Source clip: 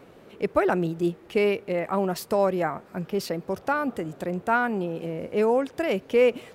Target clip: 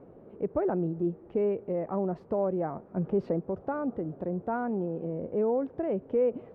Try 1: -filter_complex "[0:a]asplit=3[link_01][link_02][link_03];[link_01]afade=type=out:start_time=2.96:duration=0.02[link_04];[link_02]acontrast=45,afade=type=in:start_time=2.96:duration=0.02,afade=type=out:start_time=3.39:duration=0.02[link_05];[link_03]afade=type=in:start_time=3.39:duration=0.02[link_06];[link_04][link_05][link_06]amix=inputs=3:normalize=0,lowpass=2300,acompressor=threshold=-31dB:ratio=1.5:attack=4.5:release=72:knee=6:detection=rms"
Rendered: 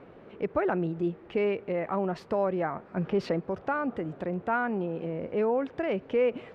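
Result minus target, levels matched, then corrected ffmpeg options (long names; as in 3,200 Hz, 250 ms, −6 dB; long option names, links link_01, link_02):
2,000 Hz band +11.0 dB
-filter_complex "[0:a]asplit=3[link_01][link_02][link_03];[link_01]afade=type=out:start_time=2.96:duration=0.02[link_04];[link_02]acontrast=45,afade=type=in:start_time=2.96:duration=0.02,afade=type=out:start_time=3.39:duration=0.02[link_05];[link_03]afade=type=in:start_time=3.39:duration=0.02[link_06];[link_04][link_05][link_06]amix=inputs=3:normalize=0,lowpass=690,acompressor=threshold=-31dB:ratio=1.5:attack=4.5:release=72:knee=6:detection=rms"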